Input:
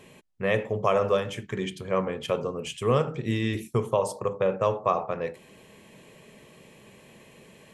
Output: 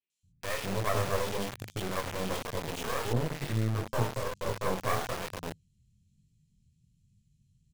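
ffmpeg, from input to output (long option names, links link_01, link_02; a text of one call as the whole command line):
ffmpeg -i in.wav -filter_complex "[0:a]asplit=2[link_01][link_02];[link_02]asoftclip=type=tanh:threshold=-26dB,volume=-11dB[link_03];[link_01][link_03]amix=inputs=2:normalize=0,adynamicsmooth=sensitivity=7.5:basefreq=2600,acrossover=split=520|2600[link_04][link_05][link_06];[link_06]adelay=100[link_07];[link_04]adelay=230[link_08];[link_08][link_05][link_07]amix=inputs=3:normalize=0,flanger=delay=19:depth=6.2:speed=1.1,acrossover=split=120|5700[link_09][link_10][link_11];[link_10]acrusher=bits=3:dc=4:mix=0:aa=0.000001[link_12];[link_09][link_12][link_11]amix=inputs=3:normalize=0,asettb=1/sr,asplit=3[link_13][link_14][link_15];[link_13]atrim=end=3.134[link_16];[link_14]atrim=start=3.13:end=4.79,asetpts=PTS-STARTPTS,afade=type=in:duration=0.004:curve=qsin,afade=type=out:start_time=1.656:duration=0.004:curve=qsin,adynamicequalizer=threshold=0.00631:dfrequency=1700:dqfactor=0.7:tfrequency=1700:tqfactor=0.7:attack=5:release=100:ratio=0.375:range=2:mode=cutabove:tftype=highshelf[link_17];[link_15]atrim=start=4.786[link_18];[link_16][link_17]acrossfade=duration=0.004:curve1=hsin:curve2=qsin[link_19];[link_19][link_18]acrossfade=duration=0.004:curve1=qsin:curve2=hsin,volume=1dB" out.wav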